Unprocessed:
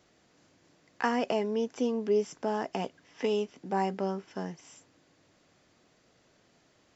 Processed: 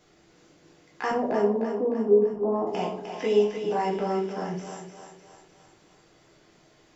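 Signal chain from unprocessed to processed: 1.11–2.67 s: steep low-pass 1.2 kHz 72 dB/octave; in parallel at +1 dB: peak limiter -25 dBFS, peak gain reduction 11 dB; on the sum: thinning echo 304 ms, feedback 53%, high-pass 310 Hz, level -7 dB; simulated room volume 44 m³, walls mixed, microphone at 0.75 m; trim -5 dB

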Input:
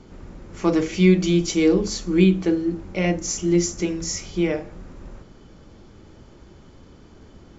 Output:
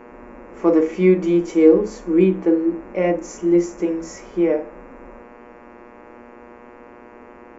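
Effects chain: mains buzz 120 Hz, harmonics 23, -47 dBFS -3 dB/octave; graphic EQ 125/250/500/1000/2000/4000 Hz -11/+10/+12/+9/+6/-9 dB; harmonic-percussive split harmonic +5 dB; trim -11.5 dB

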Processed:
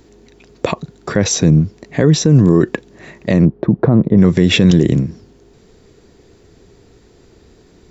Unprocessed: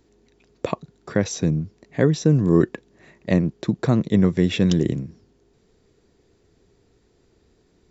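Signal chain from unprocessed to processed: 3.45–4.18 s: low-pass 1 kHz 12 dB/octave; loudness maximiser +14.5 dB; trim -1 dB

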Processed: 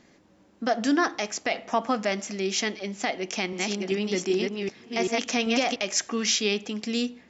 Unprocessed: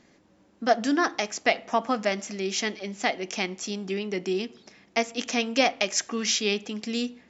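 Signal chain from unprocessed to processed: 3.14–5.76 s: chunks repeated in reverse 387 ms, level -2 dB; peak limiter -14.5 dBFS, peak gain reduction 9 dB; trim +1.5 dB

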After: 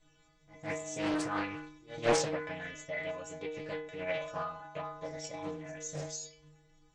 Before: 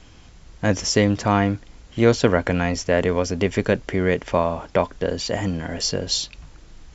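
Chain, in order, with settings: band-stop 4.1 kHz, Q 9.1; inharmonic resonator 150 Hz, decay 0.85 s, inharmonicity 0.008; pre-echo 158 ms -19 dB; formant shift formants +3 st; loudspeaker Doppler distortion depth 0.56 ms

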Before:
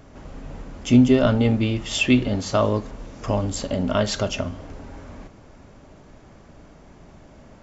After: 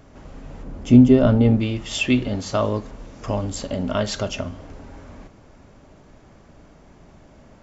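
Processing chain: 0.63–1.60 s: tilt shelf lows +5.5 dB; trim -1.5 dB

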